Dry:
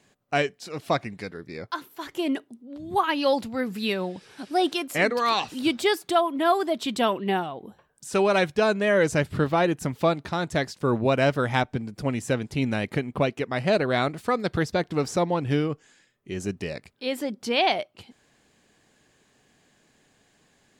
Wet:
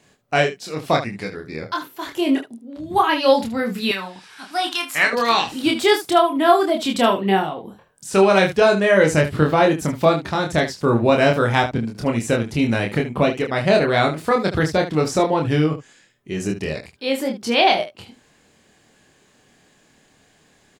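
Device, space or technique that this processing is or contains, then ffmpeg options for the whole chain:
slapback doubling: -filter_complex "[0:a]asplit=3[s0][s1][s2];[s1]adelay=26,volume=0.708[s3];[s2]adelay=75,volume=0.266[s4];[s0][s3][s4]amix=inputs=3:normalize=0,asettb=1/sr,asplit=3[s5][s6][s7];[s5]atrim=end=3.914[s8];[s6]atrim=start=3.91:end=5.13,asetpts=PTS-STARTPTS,afade=t=in:d=0.004:c=qsin,afade=t=out:st=1.216:d=0.004:c=qsin,lowshelf=f=730:t=q:w=1.5:g=-11.5[s9];[s7]atrim=start=5.126[s10];[s8][s9]acrossfade=d=0.004:c1=hsin:c2=qsin[s11];[s11][s10]acrossfade=d=0.004:c1=qsin:c2=hsin,volume=1.68"

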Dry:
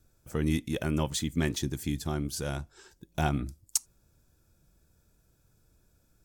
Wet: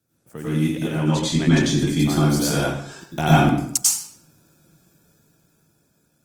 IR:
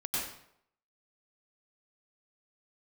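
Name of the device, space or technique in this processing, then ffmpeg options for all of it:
far-field microphone of a smart speaker: -filter_complex "[0:a]asplit=3[s0][s1][s2];[s0]afade=t=out:st=0.87:d=0.02[s3];[s1]lowpass=7300,afade=t=in:st=0.87:d=0.02,afade=t=out:st=1.92:d=0.02[s4];[s2]afade=t=in:st=1.92:d=0.02[s5];[s3][s4][s5]amix=inputs=3:normalize=0[s6];[1:a]atrim=start_sample=2205[s7];[s6][s7]afir=irnorm=-1:irlink=0,highpass=f=120:w=0.5412,highpass=f=120:w=1.3066,dynaudnorm=f=270:g=11:m=4.22" -ar 48000 -c:a libopus -b:a 24k

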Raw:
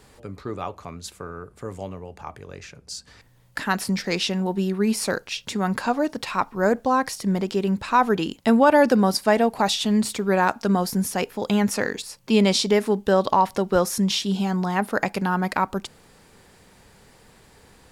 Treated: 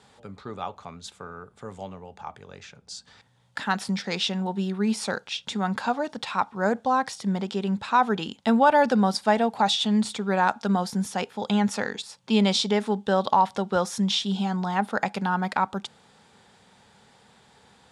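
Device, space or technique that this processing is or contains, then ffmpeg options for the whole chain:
car door speaker: -af "highpass=95,equalizer=f=210:t=q:w=4:g=4,equalizer=f=320:t=q:w=4:g=-6,equalizer=f=830:t=q:w=4:g=7,equalizer=f=1400:t=q:w=4:g=4,equalizer=f=3500:t=q:w=4:g=8,lowpass=f=9300:w=0.5412,lowpass=f=9300:w=1.3066,volume=0.562"

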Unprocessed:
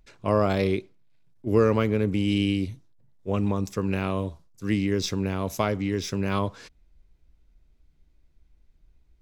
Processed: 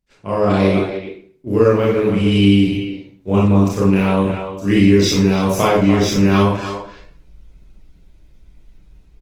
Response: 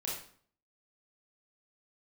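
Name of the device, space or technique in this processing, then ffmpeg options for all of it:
speakerphone in a meeting room: -filter_complex "[1:a]atrim=start_sample=2205[s0];[0:a][s0]afir=irnorm=-1:irlink=0,asplit=2[s1][s2];[s2]adelay=290,highpass=300,lowpass=3400,asoftclip=type=hard:threshold=0.178,volume=0.355[s3];[s1][s3]amix=inputs=2:normalize=0,dynaudnorm=f=170:g=5:m=4.47,agate=range=0.2:threshold=0.00251:ratio=16:detection=peak" -ar 48000 -c:a libopus -b:a 20k

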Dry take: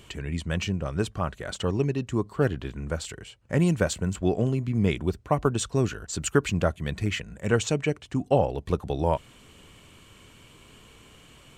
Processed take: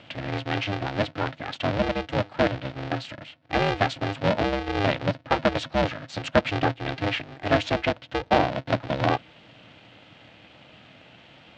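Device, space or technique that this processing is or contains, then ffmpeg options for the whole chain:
ring modulator pedal into a guitar cabinet: -af "aeval=exprs='val(0)*sgn(sin(2*PI*200*n/s))':c=same,highpass=110,equalizer=f=120:t=q:w=4:g=4,equalizer=f=240:t=q:w=4:g=-3,equalizer=f=390:t=q:w=4:g=-10,equalizer=f=620:t=q:w=4:g=3,equalizer=f=1100:t=q:w=4:g=-5,lowpass=f=4200:w=0.5412,lowpass=f=4200:w=1.3066,volume=1.41"

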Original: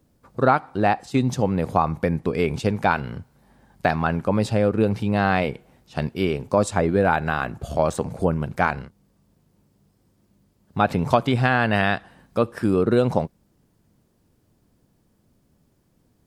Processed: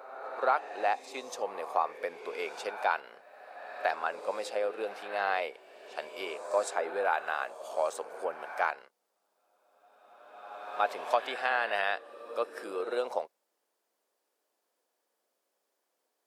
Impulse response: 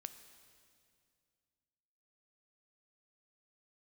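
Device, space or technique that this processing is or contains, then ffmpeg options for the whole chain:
ghost voice: -filter_complex "[0:a]areverse[s0];[1:a]atrim=start_sample=2205[s1];[s0][s1]afir=irnorm=-1:irlink=0,areverse,highpass=f=490:w=0.5412,highpass=f=490:w=1.3066,volume=0.708"

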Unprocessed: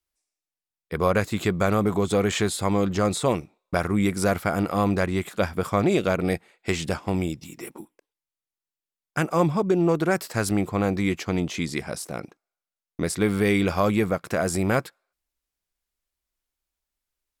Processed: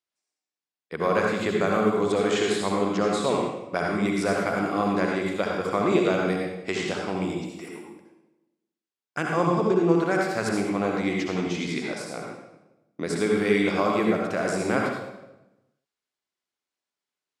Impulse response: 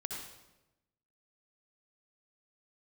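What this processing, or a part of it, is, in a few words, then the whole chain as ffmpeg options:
supermarket ceiling speaker: -filter_complex "[0:a]highpass=210,lowpass=6800[s0];[1:a]atrim=start_sample=2205[s1];[s0][s1]afir=irnorm=-1:irlink=0"

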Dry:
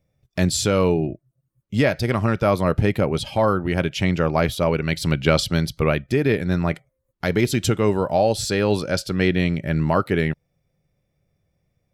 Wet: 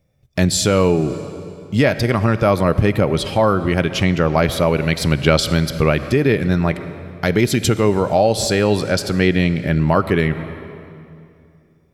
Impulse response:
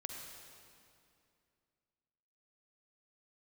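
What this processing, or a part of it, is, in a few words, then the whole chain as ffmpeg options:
ducked reverb: -filter_complex "[0:a]asplit=3[s0][s1][s2];[1:a]atrim=start_sample=2205[s3];[s1][s3]afir=irnorm=-1:irlink=0[s4];[s2]apad=whole_len=526534[s5];[s4][s5]sidechaincompress=threshold=0.0708:ratio=8:attack=30:release=163,volume=0.75[s6];[s0][s6]amix=inputs=2:normalize=0,volume=1.26"

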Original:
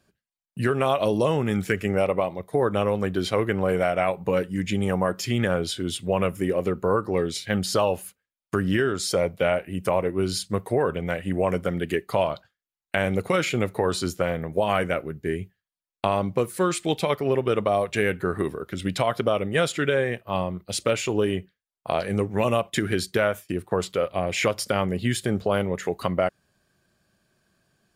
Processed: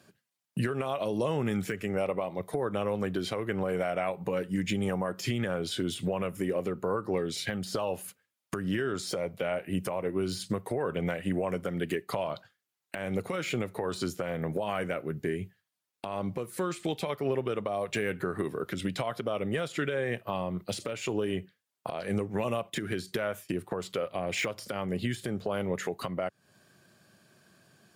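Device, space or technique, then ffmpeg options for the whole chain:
podcast mastering chain: -af "highpass=f=99:w=0.5412,highpass=f=99:w=1.3066,deesser=0.7,acompressor=threshold=0.0178:ratio=3,alimiter=level_in=1.33:limit=0.0631:level=0:latency=1:release=282,volume=0.75,volume=2.37" -ar 48000 -c:a libmp3lame -b:a 96k

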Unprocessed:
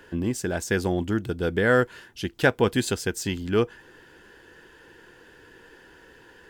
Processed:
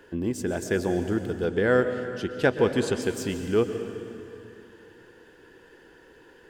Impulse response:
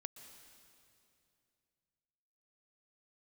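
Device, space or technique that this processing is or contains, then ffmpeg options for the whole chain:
stairwell: -filter_complex "[1:a]atrim=start_sample=2205[s0];[0:a][s0]afir=irnorm=-1:irlink=0,asettb=1/sr,asplit=3[s1][s2][s3];[s1]atrim=end=1.444[s4];[s2]atrim=start=1.44:end=3.02,asetpts=PTS-STARTPTS,afade=t=in:d=0.004:c=qsin,afade=t=out:st=1.576:d=0.004:c=qsin,lowpass=9200[s5];[s3]atrim=start=3.016[s6];[s4][s5]acrossfade=d=0.004:c1=hsin:c2=qsin[s7];[s7][s6]acrossfade=d=0.004:c1=qsin:c2=hsin,equalizer=f=400:t=o:w=1.7:g=5.5"

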